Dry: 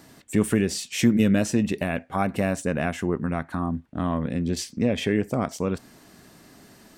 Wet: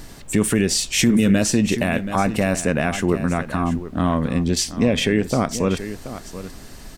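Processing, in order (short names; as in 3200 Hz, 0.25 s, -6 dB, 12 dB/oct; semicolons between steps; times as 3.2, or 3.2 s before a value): bell 6200 Hz +5 dB 2.6 oct; added noise brown -45 dBFS; on a send: echo 0.729 s -13.5 dB; on the sum: maximiser +11.5 dB; gain -6 dB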